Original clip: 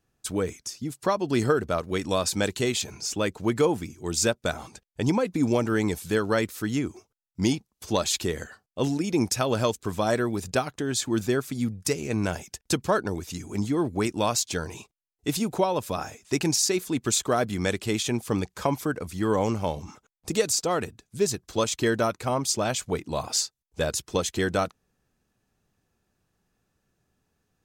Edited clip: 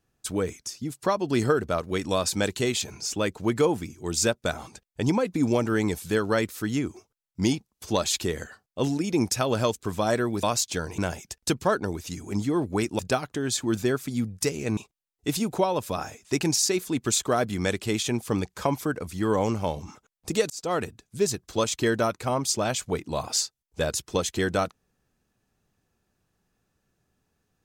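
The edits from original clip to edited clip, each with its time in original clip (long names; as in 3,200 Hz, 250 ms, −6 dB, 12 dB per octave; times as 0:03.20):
0:10.43–0:12.21: swap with 0:14.22–0:14.77
0:20.50–0:20.75: fade in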